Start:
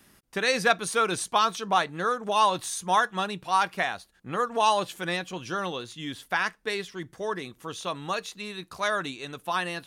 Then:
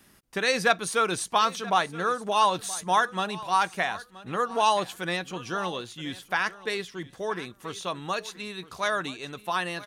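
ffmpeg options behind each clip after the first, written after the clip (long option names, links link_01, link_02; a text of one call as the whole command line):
ffmpeg -i in.wav -af "aecho=1:1:975|1950:0.126|0.0189" out.wav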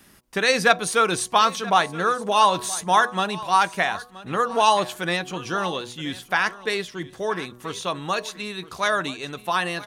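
ffmpeg -i in.wav -af "bandreject=frequency=122.2:width_type=h:width=4,bandreject=frequency=244.4:width_type=h:width=4,bandreject=frequency=366.6:width_type=h:width=4,bandreject=frequency=488.8:width_type=h:width=4,bandreject=frequency=611:width_type=h:width=4,bandreject=frequency=733.2:width_type=h:width=4,bandreject=frequency=855.4:width_type=h:width=4,bandreject=frequency=977.6:width_type=h:width=4,bandreject=frequency=1099.8:width_type=h:width=4,volume=5dB" out.wav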